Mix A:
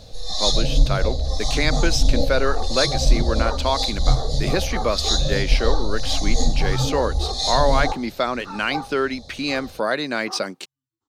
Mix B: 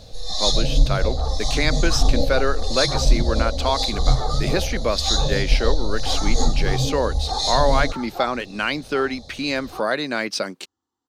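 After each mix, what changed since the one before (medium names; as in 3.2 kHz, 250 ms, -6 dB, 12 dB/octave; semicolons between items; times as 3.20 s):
second sound: entry -0.55 s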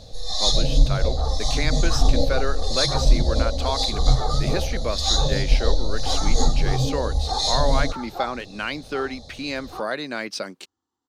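speech -5.0 dB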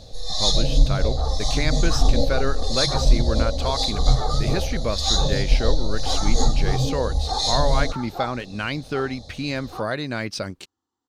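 speech: remove Bessel high-pass 270 Hz, order 8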